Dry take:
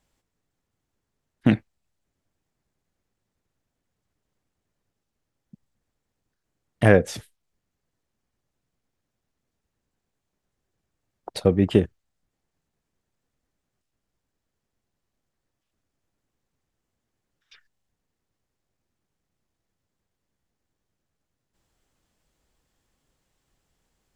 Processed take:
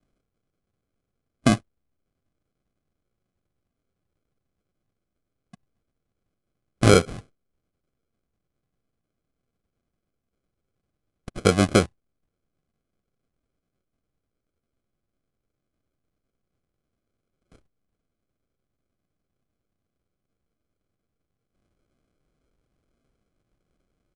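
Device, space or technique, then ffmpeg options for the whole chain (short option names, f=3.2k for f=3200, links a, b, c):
crushed at another speed: -af "asetrate=88200,aresample=44100,acrusher=samples=24:mix=1:aa=0.000001,asetrate=22050,aresample=44100"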